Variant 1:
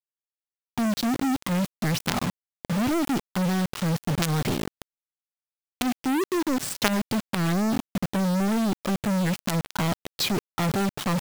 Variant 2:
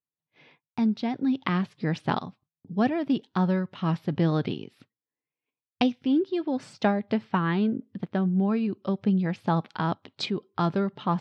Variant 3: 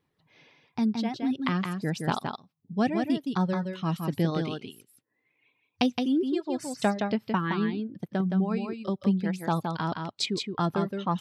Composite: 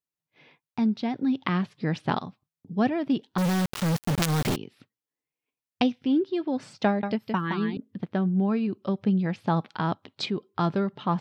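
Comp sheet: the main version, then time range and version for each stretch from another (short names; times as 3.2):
2
3.38–4.56 from 1
7.03–7.77 from 3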